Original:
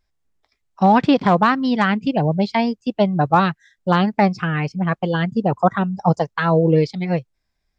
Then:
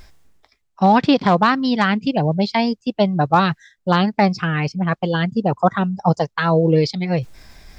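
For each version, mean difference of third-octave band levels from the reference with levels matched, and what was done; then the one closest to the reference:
1.0 dB: dynamic equaliser 4,600 Hz, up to +6 dB, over −43 dBFS, Q 1.2
reversed playback
upward compression, threshold −17 dBFS
reversed playback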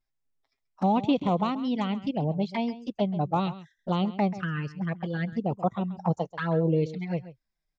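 3.5 dB: flanger swept by the level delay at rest 7.5 ms, full sweep at −15 dBFS
slap from a distant wall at 23 metres, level −15 dB
level −8.5 dB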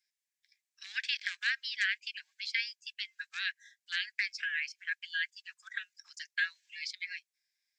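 19.5 dB: Chebyshev high-pass with heavy ripple 1,600 Hz, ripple 3 dB
high-shelf EQ 3,800 Hz +5 dB
level −4 dB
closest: first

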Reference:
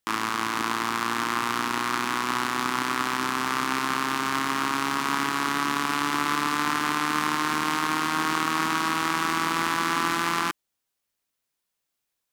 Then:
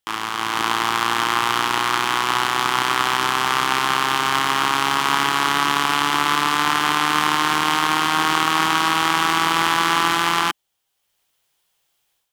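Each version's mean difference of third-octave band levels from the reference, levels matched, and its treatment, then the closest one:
2.0 dB: thirty-one-band graphic EQ 250 Hz −12 dB, 800 Hz +5 dB, 3,150 Hz +7 dB
automatic gain control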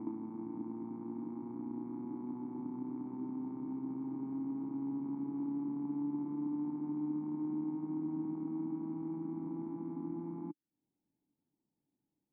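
21.0 dB: parametric band 160 Hz +14.5 dB 1.6 octaves
on a send: backwards echo 166 ms −16.5 dB
on the sum: downward compressor 8 to 1, threshold −40 dBFS, peak gain reduction 21.5 dB
formant resonators in series u
level +10.5 dB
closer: first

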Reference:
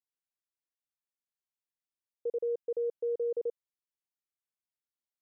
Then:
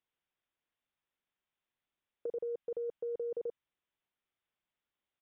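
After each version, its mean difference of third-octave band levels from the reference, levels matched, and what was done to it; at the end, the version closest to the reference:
2.5 dB: in parallel at +2 dB: compressor whose output falls as the input rises −36 dBFS, ratio −0.5
on the sum: dynamic equaliser 470 Hz, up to −6 dB, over −42 dBFS, Q 1.2
downsampling to 8,000 Hz
level −3 dB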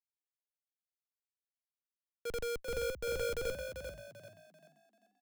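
21.0 dB: comparator with hysteresis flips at −54 dBFS
echo with shifted repeats 391 ms, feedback 46%, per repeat +50 Hz, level −5 dB
multiband upward and downward expander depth 40%
level +3 dB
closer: first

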